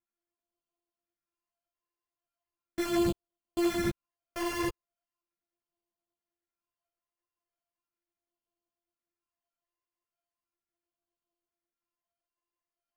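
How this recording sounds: a buzz of ramps at a fixed pitch in blocks of 128 samples; phasing stages 12, 0.38 Hz, lowest notch 230–2000 Hz; aliases and images of a low sample rate 3800 Hz, jitter 0%; a shimmering, thickened sound

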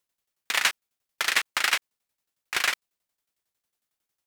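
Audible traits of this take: tremolo saw down 11 Hz, depth 80%

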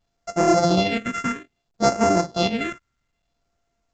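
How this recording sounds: a buzz of ramps at a fixed pitch in blocks of 64 samples; phasing stages 4, 0.61 Hz, lowest notch 670–3500 Hz; µ-law

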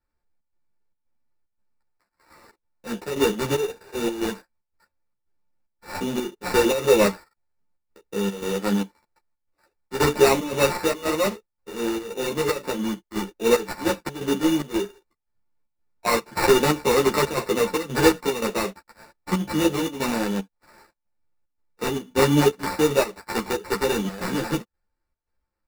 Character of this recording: a buzz of ramps at a fixed pitch in blocks of 8 samples; chopped level 1.9 Hz, depth 65%, duty 75%; aliases and images of a low sample rate 3200 Hz, jitter 0%; a shimmering, thickened sound

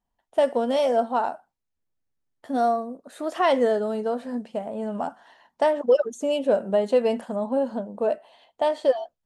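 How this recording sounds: noise floor -81 dBFS; spectral tilt -3.5 dB/oct

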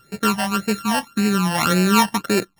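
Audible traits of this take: a buzz of ramps at a fixed pitch in blocks of 32 samples; phasing stages 12, 1.8 Hz, lowest notch 400–1100 Hz; MP3

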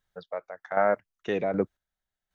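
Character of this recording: chopped level 1.3 Hz, depth 65%, duty 30%

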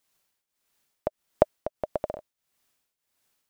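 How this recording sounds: tremolo triangle 1.6 Hz, depth 85%

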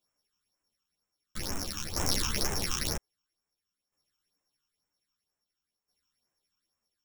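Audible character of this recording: a buzz of ramps at a fixed pitch in blocks of 8 samples; phasing stages 8, 2.1 Hz, lowest notch 570–4400 Hz; tremolo saw down 0.51 Hz, depth 65%; a shimmering, thickened sound

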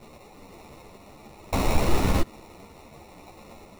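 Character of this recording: a quantiser's noise floor 8-bit, dither triangular; phasing stages 4, 1.1 Hz, lowest notch 250–1100 Hz; aliases and images of a low sample rate 1600 Hz, jitter 0%; a shimmering, thickened sound

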